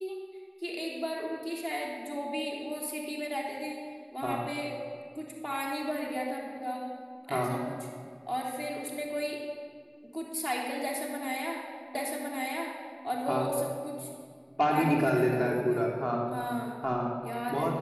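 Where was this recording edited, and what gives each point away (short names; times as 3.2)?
11.95 repeat of the last 1.11 s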